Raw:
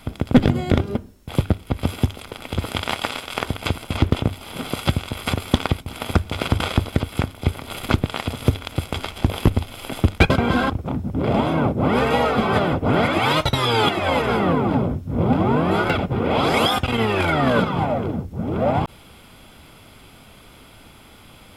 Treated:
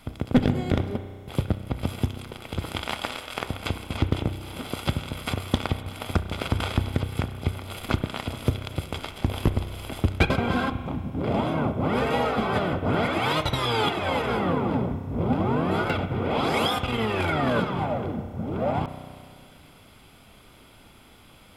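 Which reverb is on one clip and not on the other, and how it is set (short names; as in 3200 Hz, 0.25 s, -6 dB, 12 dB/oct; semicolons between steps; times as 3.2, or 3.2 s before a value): spring tank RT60 2 s, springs 32 ms, chirp 20 ms, DRR 10 dB; gain -6 dB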